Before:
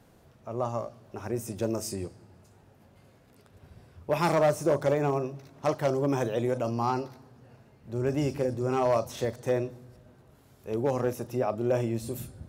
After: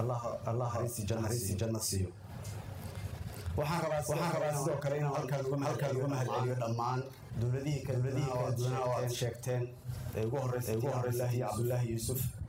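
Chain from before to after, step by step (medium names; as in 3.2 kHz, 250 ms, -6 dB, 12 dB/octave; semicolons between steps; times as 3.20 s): peaking EQ 240 Hz -11.5 dB 1.5 oct; Schroeder reverb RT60 0.31 s, combs from 32 ms, DRR 4 dB; reverb removal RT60 0.61 s; reverse echo 508 ms -4 dB; in parallel at +3 dB: peak limiter -26 dBFS, peak gain reduction 11 dB; on the sum: high-pass 87 Hz; tone controls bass +12 dB, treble +3 dB; compression 6:1, threshold -36 dBFS, peak gain reduction 19.5 dB; attacks held to a fixed rise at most 270 dB/s; trim +4 dB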